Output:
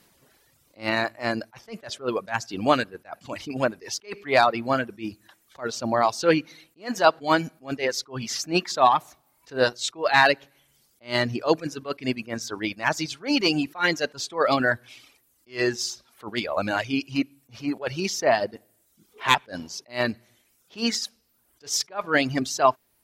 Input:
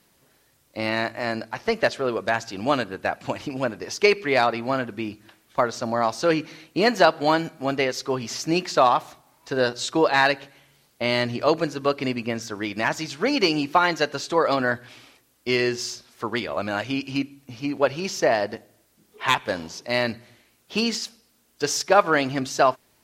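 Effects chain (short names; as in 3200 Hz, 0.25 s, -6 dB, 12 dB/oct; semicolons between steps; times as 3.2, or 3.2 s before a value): reverb removal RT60 0.83 s; attack slew limiter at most 250 dB/s; gain +2.5 dB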